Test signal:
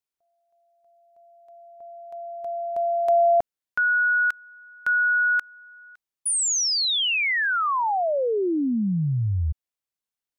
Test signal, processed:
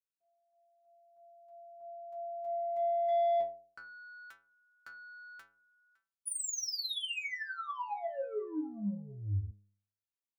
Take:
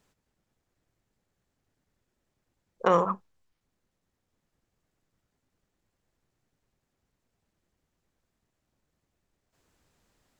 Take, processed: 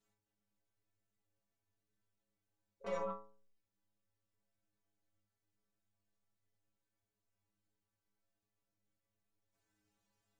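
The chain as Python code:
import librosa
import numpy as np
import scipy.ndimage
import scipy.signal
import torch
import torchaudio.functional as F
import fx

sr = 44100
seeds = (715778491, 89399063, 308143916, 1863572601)

y = fx.dynamic_eq(x, sr, hz=1500.0, q=1.6, threshold_db=-35.0, ratio=4.0, max_db=-5)
y = 10.0 ** (-21.0 / 20.0) * np.tanh(y / 10.0 ** (-21.0 / 20.0))
y = fx.stiff_resonator(y, sr, f0_hz=100.0, decay_s=0.57, stiffness=0.008)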